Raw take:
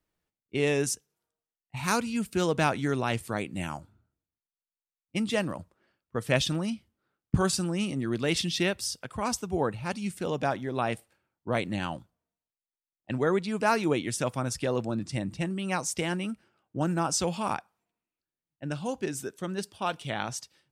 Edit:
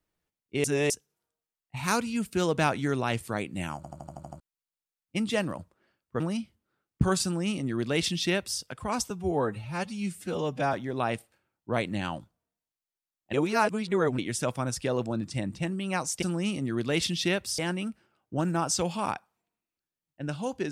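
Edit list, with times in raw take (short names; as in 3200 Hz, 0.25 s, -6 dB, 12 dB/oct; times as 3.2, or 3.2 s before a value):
0.64–0.9 reverse
3.76 stutter in place 0.08 s, 8 plays
6.2–6.53 cut
7.57–8.93 copy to 16.01
9.43–10.52 stretch 1.5×
13.12–13.97 reverse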